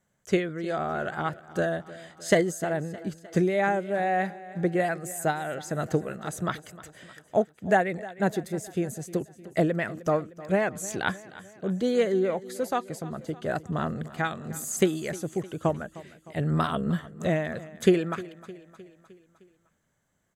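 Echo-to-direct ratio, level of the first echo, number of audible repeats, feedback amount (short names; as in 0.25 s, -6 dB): -16.5 dB, -18.0 dB, 4, 56%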